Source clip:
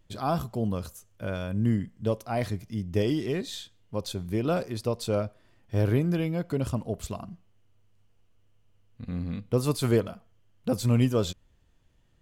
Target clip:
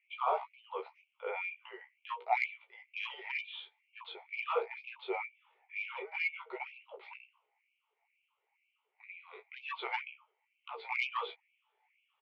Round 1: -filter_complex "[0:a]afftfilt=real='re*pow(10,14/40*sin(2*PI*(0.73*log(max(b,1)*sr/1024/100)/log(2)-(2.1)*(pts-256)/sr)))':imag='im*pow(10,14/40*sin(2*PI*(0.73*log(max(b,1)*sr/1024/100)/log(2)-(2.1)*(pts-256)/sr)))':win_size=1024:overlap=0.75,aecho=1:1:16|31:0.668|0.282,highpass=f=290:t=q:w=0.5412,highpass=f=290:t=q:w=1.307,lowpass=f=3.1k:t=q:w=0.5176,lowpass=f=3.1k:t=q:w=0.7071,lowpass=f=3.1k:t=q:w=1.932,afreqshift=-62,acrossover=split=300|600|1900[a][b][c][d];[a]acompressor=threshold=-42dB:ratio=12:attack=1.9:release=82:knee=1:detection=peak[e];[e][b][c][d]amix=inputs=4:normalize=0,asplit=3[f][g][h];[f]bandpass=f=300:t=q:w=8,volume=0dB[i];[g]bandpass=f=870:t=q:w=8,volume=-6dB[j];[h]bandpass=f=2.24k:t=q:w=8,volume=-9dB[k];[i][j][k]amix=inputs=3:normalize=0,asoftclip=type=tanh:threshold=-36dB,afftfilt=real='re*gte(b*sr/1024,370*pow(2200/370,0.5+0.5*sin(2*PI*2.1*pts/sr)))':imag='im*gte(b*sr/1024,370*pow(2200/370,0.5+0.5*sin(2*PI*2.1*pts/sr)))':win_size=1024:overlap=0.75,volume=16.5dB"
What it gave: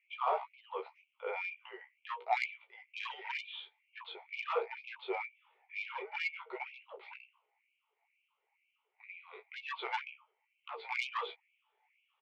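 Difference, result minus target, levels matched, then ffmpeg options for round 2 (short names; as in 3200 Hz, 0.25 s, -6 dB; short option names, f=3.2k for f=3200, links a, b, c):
soft clip: distortion +6 dB
-filter_complex "[0:a]afftfilt=real='re*pow(10,14/40*sin(2*PI*(0.73*log(max(b,1)*sr/1024/100)/log(2)-(2.1)*(pts-256)/sr)))':imag='im*pow(10,14/40*sin(2*PI*(0.73*log(max(b,1)*sr/1024/100)/log(2)-(2.1)*(pts-256)/sr)))':win_size=1024:overlap=0.75,aecho=1:1:16|31:0.668|0.282,highpass=f=290:t=q:w=0.5412,highpass=f=290:t=q:w=1.307,lowpass=f=3.1k:t=q:w=0.5176,lowpass=f=3.1k:t=q:w=0.7071,lowpass=f=3.1k:t=q:w=1.932,afreqshift=-62,acrossover=split=300|600|1900[a][b][c][d];[a]acompressor=threshold=-42dB:ratio=12:attack=1.9:release=82:knee=1:detection=peak[e];[e][b][c][d]amix=inputs=4:normalize=0,asplit=3[f][g][h];[f]bandpass=f=300:t=q:w=8,volume=0dB[i];[g]bandpass=f=870:t=q:w=8,volume=-6dB[j];[h]bandpass=f=2.24k:t=q:w=8,volume=-9dB[k];[i][j][k]amix=inputs=3:normalize=0,asoftclip=type=tanh:threshold=-29.5dB,afftfilt=real='re*gte(b*sr/1024,370*pow(2200/370,0.5+0.5*sin(2*PI*2.1*pts/sr)))':imag='im*gte(b*sr/1024,370*pow(2200/370,0.5+0.5*sin(2*PI*2.1*pts/sr)))':win_size=1024:overlap=0.75,volume=16.5dB"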